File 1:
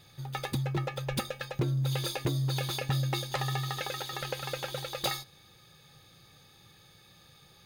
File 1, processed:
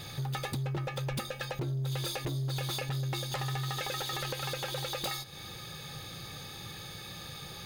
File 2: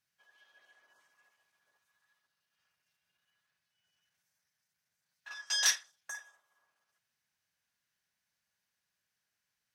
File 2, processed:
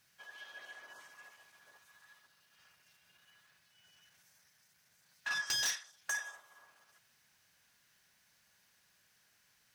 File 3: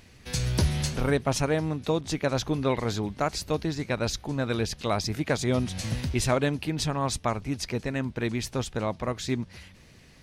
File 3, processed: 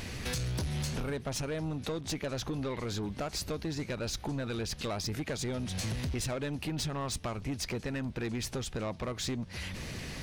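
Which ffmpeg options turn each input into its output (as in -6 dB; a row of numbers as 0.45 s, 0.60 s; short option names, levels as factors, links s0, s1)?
-filter_complex "[0:a]asplit=2[s0][s1];[s1]alimiter=limit=0.106:level=0:latency=1:release=39,volume=0.794[s2];[s0][s2]amix=inputs=2:normalize=0,acompressor=threshold=0.0112:ratio=5,asoftclip=type=tanh:threshold=0.0126,volume=2.82"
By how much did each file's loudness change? -3.0 LU, -7.0 LU, -7.0 LU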